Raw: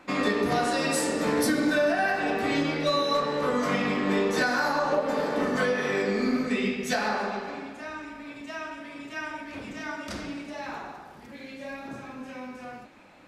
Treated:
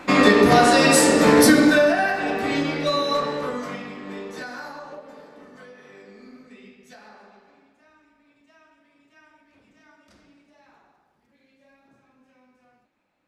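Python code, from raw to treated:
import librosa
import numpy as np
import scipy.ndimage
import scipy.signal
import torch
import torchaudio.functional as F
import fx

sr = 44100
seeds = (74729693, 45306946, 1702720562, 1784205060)

y = fx.gain(x, sr, db=fx.line((1.53, 11.0), (2.13, 2.5), (3.26, 2.5), (3.91, -10.0), (4.6, -10.0), (5.41, -20.0)))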